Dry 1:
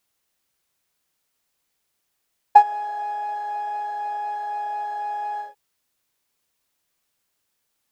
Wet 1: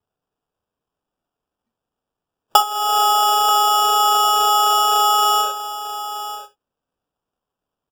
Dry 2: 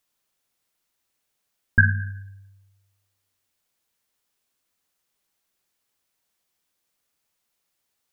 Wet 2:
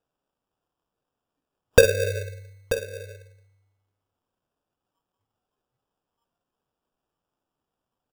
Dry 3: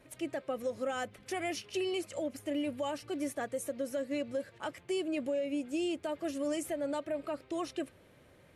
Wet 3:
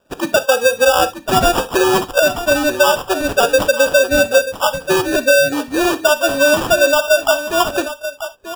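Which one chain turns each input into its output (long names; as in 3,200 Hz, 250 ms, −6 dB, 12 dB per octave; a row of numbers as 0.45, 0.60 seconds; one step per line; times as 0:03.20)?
noise reduction from a noise print of the clip's start 24 dB
low-pass filter 11,000 Hz 24 dB per octave
low shelf with overshoot 360 Hz −12 dB, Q 1.5
downward compressor 5 to 1, threshold −32 dBFS
decimation without filtering 21×
on a send: single-tap delay 935 ms −12 dB
on the sum: reverb whose tail is shaped and stops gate 90 ms flat, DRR 11.5 dB
normalise the peak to −1.5 dBFS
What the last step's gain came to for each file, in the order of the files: +17.0, +18.5, +24.0 decibels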